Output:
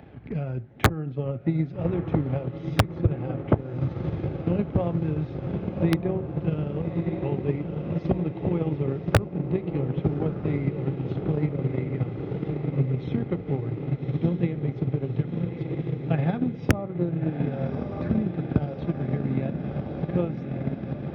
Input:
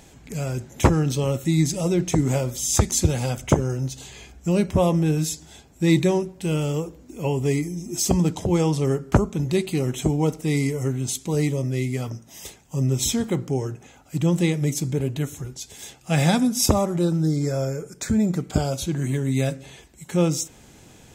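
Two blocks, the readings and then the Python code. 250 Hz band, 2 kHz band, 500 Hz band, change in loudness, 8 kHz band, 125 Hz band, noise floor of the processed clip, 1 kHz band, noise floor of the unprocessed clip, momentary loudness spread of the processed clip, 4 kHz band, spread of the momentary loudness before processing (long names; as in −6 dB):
−4.0 dB, −3.0 dB, −4.5 dB, −4.5 dB, below −20 dB, −2.5 dB, −38 dBFS, −4.5 dB, −50 dBFS, 6 LU, −11.5 dB, 12 LU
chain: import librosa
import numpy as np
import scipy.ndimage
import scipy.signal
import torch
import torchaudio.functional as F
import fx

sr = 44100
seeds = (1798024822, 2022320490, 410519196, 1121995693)

p1 = scipy.ndimage.gaussian_filter1d(x, 3.5, mode='constant')
p2 = p1 + fx.echo_diffused(p1, sr, ms=1216, feedback_pct=75, wet_db=-5.5, dry=0)
p3 = (np.mod(10.0 ** (5.0 / 20.0) * p2 + 1.0, 2.0) - 1.0) / 10.0 ** (5.0 / 20.0)
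p4 = fx.notch(p3, sr, hz=970.0, q=8.2)
p5 = fx.transient(p4, sr, attack_db=10, sustain_db=-3)
p6 = scipy.signal.sosfilt(scipy.signal.butter(2, 56.0, 'highpass', fs=sr, output='sos'), p5)
p7 = fx.peak_eq(p6, sr, hz=110.0, db=6.5, octaves=0.37)
p8 = fx.band_squash(p7, sr, depth_pct=40)
y = p8 * 10.0 ** (-9.0 / 20.0)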